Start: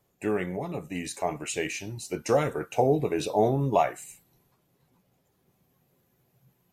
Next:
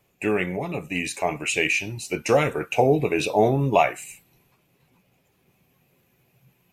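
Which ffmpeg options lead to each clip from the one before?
-af "equalizer=f=2.5k:t=o:w=0.5:g=11.5,volume=4dB"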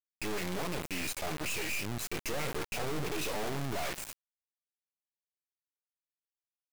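-af "alimiter=limit=-14.5dB:level=0:latency=1,asoftclip=type=hard:threshold=-32.5dB,acrusher=bits=3:dc=4:mix=0:aa=0.000001"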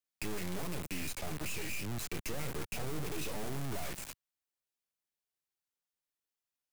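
-filter_complex "[0:a]acrossover=split=99|250|7000[a][b][c][d];[a]acompressor=threshold=-39dB:ratio=4[e];[b]acompressor=threshold=-45dB:ratio=4[f];[c]acompressor=threshold=-45dB:ratio=4[g];[d]acompressor=threshold=-46dB:ratio=4[h];[e][f][g][h]amix=inputs=4:normalize=0,volume=2.5dB"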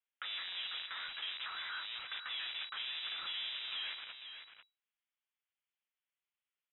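-filter_complex "[0:a]acrossover=split=430 2600:gain=0.158 1 0.126[a][b][c];[a][b][c]amix=inputs=3:normalize=0,lowpass=f=3.3k:t=q:w=0.5098,lowpass=f=3.3k:t=q:w=0.6013,lowpass=f=3.3k:t=q:w=0.9,lowpass=f=3.3k:t=q:w=2.563,afreqshift=-3900,aecho=1:1:496:0.355,volume=4dB"

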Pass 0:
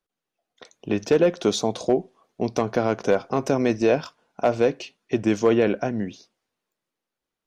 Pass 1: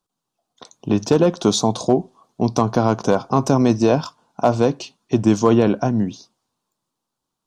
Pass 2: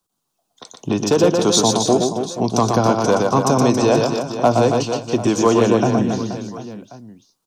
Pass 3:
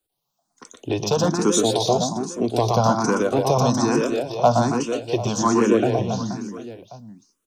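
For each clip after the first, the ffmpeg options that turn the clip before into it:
-af "equalizer=f=125:t=o:w=1:g=8,equalizer=f=250:t=o:w=1:g=4,equalizer=f=500:t=o:w=1:g=-4,equalizer=f=1k:t=o:w=1:g=10,equalizer=f=2k:t=o:w=1:g=-11,equalizer=f=4k:t=o:w=1:g=4,equalizer=f=8k:t=o:w=1:g=6,volume=2.5dB"
-filter_complex "[0:a]acrossover=split=360|390|4000[a][b][c][d];[a]alimiter=limit=-15dB:level=0:latency=1:release=426[e];[e][b][c][d]amix=inputs=4:normalize=0,crystalizer=i=1:c=0,aecho=1:1:120|276|478.8|742.4|1085:0.631|0.398|0.251|0.158|0.1,volume=1.5dB"
-filter_complex "[0:a]asplit=2[a][b];[b]afreqshift=1.2[c];[a][c]amix=inputs=2:normalize=1"

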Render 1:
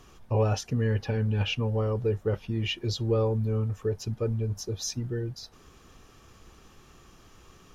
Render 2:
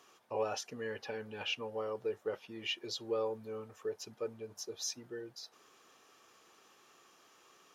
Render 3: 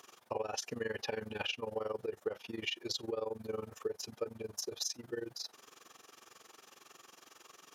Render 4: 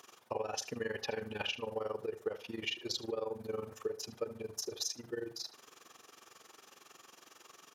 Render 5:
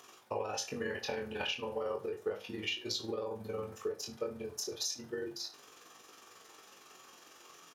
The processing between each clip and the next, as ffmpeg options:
-af "highpass=450,volume=-5dB"
-af "highshelf=f=5.4k:g=5,acompressor=threshold=-38dB:ratio=10,tremolo=f=22:d=0.889,volume=8dB"
-filter_complex "[0:a]asplit=2[a][b];[b]adelay=75,lowpass=f=4.5k:p=1,volume=-14dB,asplit=2[c][d];[d]adelay=75,lowpass=f=4.5k:p=1,volume=0.28,asplit=2[e][f];[f]adelay=75,lowpass=f=4.5k:p=1,volume=0.28[g];[a][c][e][g]amix=inputs=4:normalize=0"
-filter_complex "[0:a]flanger=delay=18.5:depth=4.6:speed=0.33,asplit=2[a][b];[b]adelay=35,volume=-11dB[c];[a][c]amix=inputs=2:normalize=0,volume=4dB"

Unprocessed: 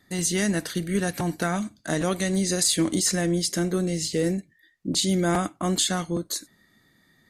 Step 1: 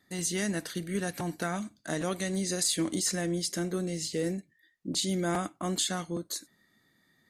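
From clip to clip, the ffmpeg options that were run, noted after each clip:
-af "lowshelf=f=87:g=-8,volume=-6dB"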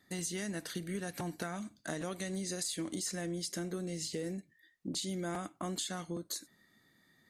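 -af "acompressor=threshold=-36dB:ratio=4"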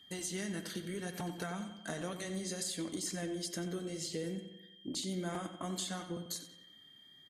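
-filter_complex "[0:a]aeval=exprs='val(0)+0.00178*sin(2*PI*3200*n/s)':c=same,flanger=delay=0.7:depth=8.4:regen=-50:speed=0.64:shape=triangular,asplit=2[a][b];[b]adelay=91,lowpass=f=4.3k:p=1,volume=-9.5dB,asplit=2[c][d];[d]adelay=91,lowpass=f=4.3k:p=1,volume=0.54,asplit=2[e][f];[f]adelay=91,lowpass=f=4.3k:p=1,volume=0.54,asplit=2[g][h];[h]adelay=91,lowpass=f=4.3k:p=1,volume=0.54,asplit=2[i][j];[j]adelay=91,lowpass=f=4.3k:p=1,volume=0.54,asplit=2[k][l];[l]adelay=91,lowpass=f=4.3k:p=1,volume=0.54[m];[c][e][g][i][k][m]amix=inputs=6:normalize=0[n];[a][n]amix=inputs=2:normalize=0,volume=2.5dB"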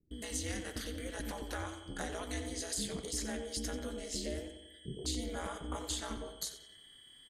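-filter_complex "[0:a]aeval=exprs='val(0)*sin(2*PI*120*n/s)':c=same,aeval=exprs='val(0)+0.000316*sin(2*PI*8500*n/s)':c=same,acrossover=split=360[a][b];[b]adelay=110[c];[a][c]amix=inputs=2:normalize=0,volume=4dB"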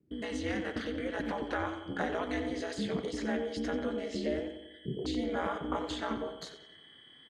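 -af "highpass=130,lowpass=2.3k,volume=8dB"

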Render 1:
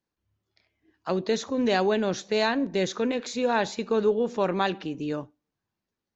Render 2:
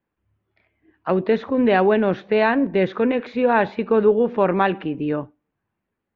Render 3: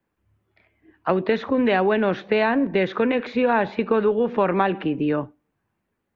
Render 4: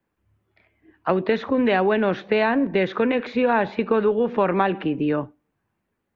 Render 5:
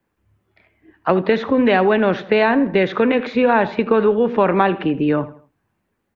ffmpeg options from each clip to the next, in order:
-af "lowpass=f=2.6k:w=0.5412,lowpass=f=2.6k:w=1.3066,volume=7dB"
-filter_complex "[0:a]acrossover=split=180|970[a][b][c];[a]acompressor=threshold=-38dB:ratio=4[d];[b]acompressor=threshold=-23dB:ratio=4[e];[c]acompressor=threshold=-27dB:ratio=4[f];[d][e][f]amix=inputs=3:normalize=0,volume=3.5dB"
-af anull
-filter_complex "[0:a]asplit=2[a][b];[b]adelay=81,lowpass=f=3.5k:p=1,volume=-16dB,asplit=2[c][d];[d]adelay=81,lowpass=f=3.5k:p=1,volume=0.38,asplit=2[e][f];[f]adelay=81,lowpass=f=3.5k:p=1,volume=0.38[g];[a][c][e][g]amix=inputs=4:normalize=0,volume=4.5dB"

